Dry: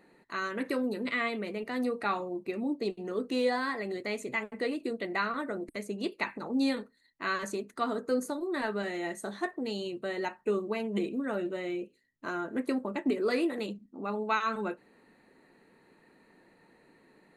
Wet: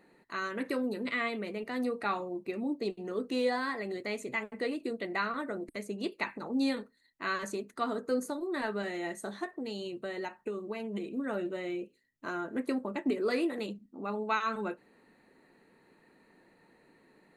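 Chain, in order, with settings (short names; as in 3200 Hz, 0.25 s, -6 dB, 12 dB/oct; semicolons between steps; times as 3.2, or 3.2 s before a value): 9.43–11.17 compressor, threshold -32 dBFS, peak gain reduction 8 dB; gain -1.5 dB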